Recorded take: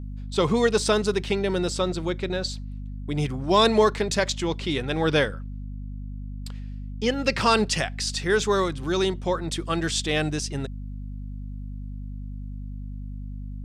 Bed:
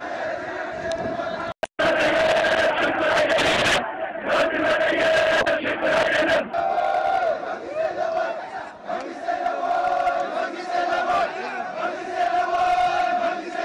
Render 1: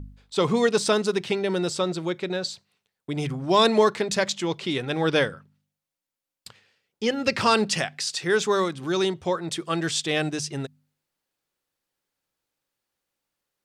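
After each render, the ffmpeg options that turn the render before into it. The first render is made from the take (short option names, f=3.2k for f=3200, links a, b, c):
-af "bandreject=f=50:t=h:w=4,bandreject=f=100:t=h:w=4,bandreject=f=150:t=h:w=4,bandreject=f=200:t=h:w=4,bandreject=f=250:t=h:w=4"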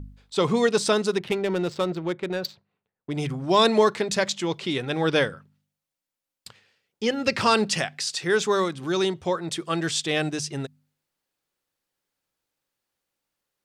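-filter_complex "[0:a]asettb=1/sr,asplit=3[a][b][c];[a]atrim=end=1.184[d];[b]atrim=start=1.18:end=3.13,asetpts=PTS-STARTPTS,afade=t=in:d=0.004:c=qsin,afade=t=out:st=1.946:d=0.004:c=qsin,adynamicsmooth=sensitivity=3.5:basefreq=1.6k[e];[c]atrim=start=3.126[f];[d][e]acrossfade=d=0.004:c1=hsin:c2=qsin[g];[g][f]acrossfade=d=0.004:c1=qsin:c2=hsin"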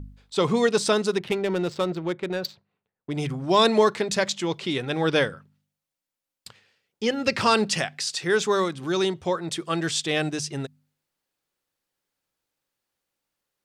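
-af anull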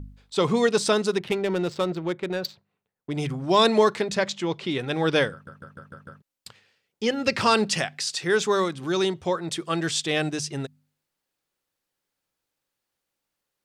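-filter_complex "[0:a]asettb=1/sr,asplit=3[a][b][c];[a]atrim=end=4.044[d];[b]atrim=start=4.04:end=4.79,asetpts=PTS-STARTPTS,afade=t=in:d=0.004:c=qsin,afade=t=out:st=0.746:d=0.004:c=qsin,highshelf=f=5.3k:g=-9[e];[c]atrim=start=4.786[f];[d][e]acrossfade=d=0.004:c1=hsin:c2=qsin[g];[g][f]acrossfade=d=0.004:c1=qsin:c2=hsin,asplit=7[h][i][j][k][l][m][n];[h]atrim=end=5.472[o];[i]atrim=start=5.318:end=5.472[p];[j]atrim=start=5.318:end=5.472[q];[k]atrim=start=5.318:end=5.472[r];[l]atrim=start=5.318:end=5.472[s];[m]atrim=start=5.318:end=5.472[t];[n]atrim=start=6.218[u];[o][p]acrossfade=d=0.004:c1=hsin:c2=hsin[v];[v][q]acrossfade=d=0.004:c1=hsin:c2=hsin[w];[w][r]acrossfade=d=0.004:c1=hsin:c2=hsin[x];[x][s]acrossfade=d=0.004:c1=hsin:c2=hsin[y];[y][t]acrossfade=d=0.004:c1=hsin:c2=hsin[z];[z][u]acrossfade=d=0.004:c1=hsin:c2=hsin"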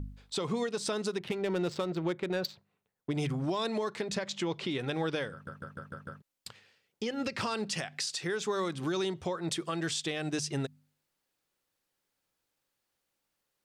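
-af "acompressor=threshold=-27dB:ratio=6,alimiter=limit=-23dB:level=0:latency=1:release=190"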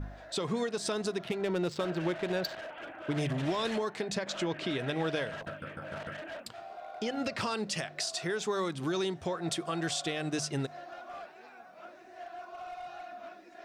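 -filter_complex "[1:a]volume=-23dB[a];[0:a][a]amix=inputs=2:normalize=0"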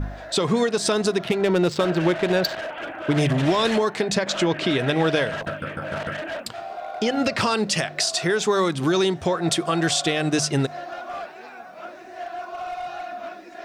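-af "volume=11.5dB"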